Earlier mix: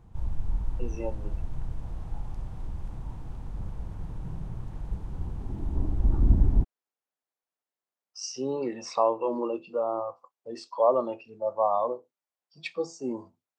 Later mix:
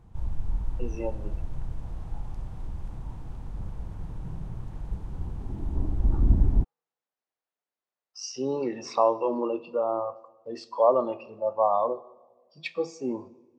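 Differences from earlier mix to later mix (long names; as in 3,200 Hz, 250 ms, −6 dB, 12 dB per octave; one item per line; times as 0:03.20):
speech: add low-pass filter 5,900 Hz
reverb: on, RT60 1.3 s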